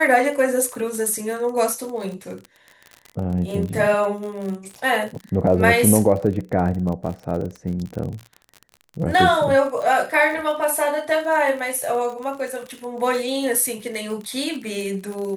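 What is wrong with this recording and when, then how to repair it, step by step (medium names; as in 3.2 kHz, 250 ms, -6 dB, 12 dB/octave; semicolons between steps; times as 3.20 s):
crackle 42 per s -28 dBFS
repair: de-click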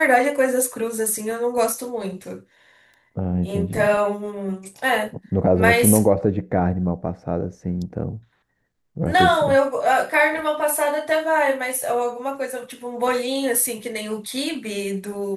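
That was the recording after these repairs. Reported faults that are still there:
nothing left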